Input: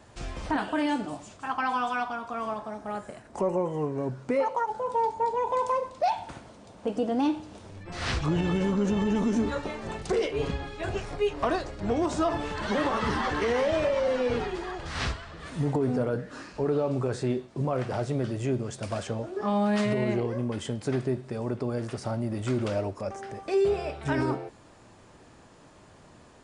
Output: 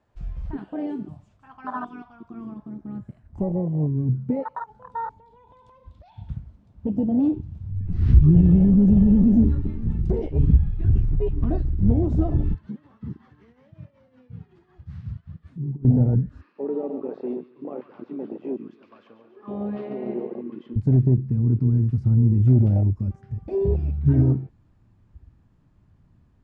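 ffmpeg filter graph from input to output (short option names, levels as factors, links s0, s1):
-filter_complex "[0:a]asettb=1/sr,asplit=3[s0][s1][s2];[s0]atrim=end=5.184[s3];[s1]atrim=start=5.18:end=6.35,asetpts=PTS-STARTPTS,afade=t=in:d=0.004:c=qsin,afade=t=out:st=1.166:d=0.004:c=qsin,equalizer=f=3500:w=2.4:g=10,acompressor=threshold=0.0282:ratio=10:attack=3.2:release=140:knee=1:detection=peak[s4];[s2]atrim=start=6.346[s5];[s3][s4]acrossfade=d=0.004:c1=hsin:c2=qsin[s6];[s6][s5]acrossfade=d=0.004:c1=qsin:c2=hsin,asettb=1/sr,asplit=3[s7][s8][s9];[s7]atrim=end=12.544[s10];[s8]atrim=start=12.54:end=15.85,asetpts=PTS-STARTPTS,afade=t=in:d=0.004:c=qsin,afade=t=out:st=3.306:d=0.004:c=qsin,highpass=f=100:w=0.5412,highpass=f=100:w=1.3066,tremolo=f=5.4:d=0.81,acompressor=threshold=0.01:ratio=3:attack=3.2:release=140:knee=1:detection=peak[s11];[s9]atrim=start=15.846[s12];[s10][s11]acrossfade=d=0.004:c1=hsin:c2=qsin[s13];[s13][s12]acrossfade=d=0.004:c1=qsin:c2=hsin,asettb=1/sr,asplit=3[s14][s15][s16];[s14]atrim=end=16.414[s17];[s15]atrim=start=16.41:end=20.76,asetpts=PTS-STARTPTS,afade=t=in:d=0.004:c=qsin,afade=t=out:st=4.346:d=0.004:c=qsin,highpass=f=320:w=0.5412,highpass=f=320:w=1.3066,equalizer=f=470:t=q:w=4:g=3,equalizer=f=670:t=q:w=4:g=-6,equalizer=f=1100:t=q:w=4:g=7,equalizer=f=2600:t=q:w=4:g=4,lowpass=f=4200:w=0.5412,lowpass=f=4200:w=1.3066,aecho=1:1:142|284|426|568|710|852|994:0.355|0.206|0.119|0.0692|0.0402|0.0233|0.0135,atrim=end_sample=191835[s18];[s16]atrim=start=20.756[s19];[s17][s18]acrossfade=d=0.004:c1=hsin:c2=qsin[s20];[s20][s19]acrossfade=d=0.004:c1=qsin:c2=hsin,asubboost=boost=10:cutoff=160,afwtdn=0.0891,aemphasis=mode=reproduction:type=75fm"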